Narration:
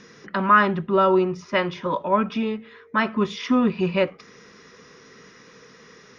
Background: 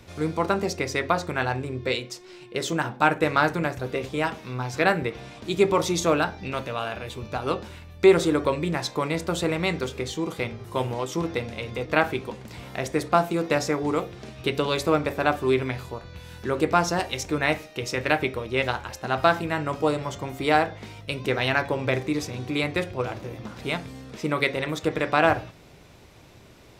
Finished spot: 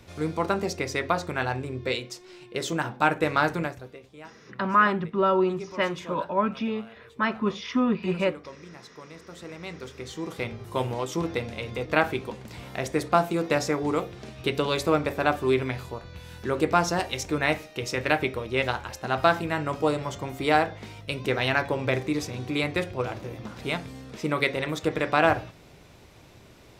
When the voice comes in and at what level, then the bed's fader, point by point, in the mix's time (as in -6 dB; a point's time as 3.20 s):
4.25 s, -4.0 dB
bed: 3.61 s -2 dB
4.02 s -19.5 dB
9.20 s -19.5 dB
10.54 s -1 dB